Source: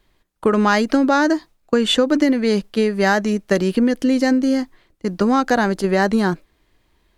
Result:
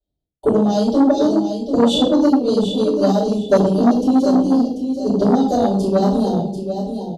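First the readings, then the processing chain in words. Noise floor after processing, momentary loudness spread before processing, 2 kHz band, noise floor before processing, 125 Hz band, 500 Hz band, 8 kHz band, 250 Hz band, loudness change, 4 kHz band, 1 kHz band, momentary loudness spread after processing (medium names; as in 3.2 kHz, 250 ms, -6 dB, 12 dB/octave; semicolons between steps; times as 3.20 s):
-79 dBFS, 7 LU, -16.5 dB, -64 dBFS, +4.0 dB, +2.5 dB, no reading, +2.5 dB, +1.5 dB, -1.5 dB, -1.0 dB, 7 LU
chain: high-pass 71 Hz 12 dB/octave; treble shelf 2.6 kHz -10.5 dB; reverb removal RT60 0.82 s; harmonic-percussive split percussive +5 dB; elliptic band-stop 730–3400 Hz, stop band 40 dB; peaking EQ 380 Hz -3 dB 2 oct; feedback delay 740 ms, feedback 25%, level -8.5 dB; simulated room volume 84 m³, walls mixed, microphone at 4.4 m; gate with hold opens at -35 dBFS; transformer saturation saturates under 510 Hz; trim -10 dB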